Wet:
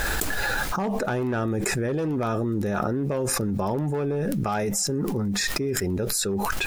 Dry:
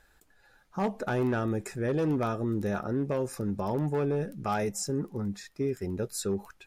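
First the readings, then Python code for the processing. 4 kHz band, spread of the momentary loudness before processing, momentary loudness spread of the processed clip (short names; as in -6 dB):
+14.0 dB, 5 LU, 1 LU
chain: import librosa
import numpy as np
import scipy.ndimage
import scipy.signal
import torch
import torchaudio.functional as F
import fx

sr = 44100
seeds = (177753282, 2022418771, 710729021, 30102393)

y = fx.quant_dither(x, sr, seeds[0], bits=12, dither='none')
y = fx.env_flatten(y, sr, amount_pct=100)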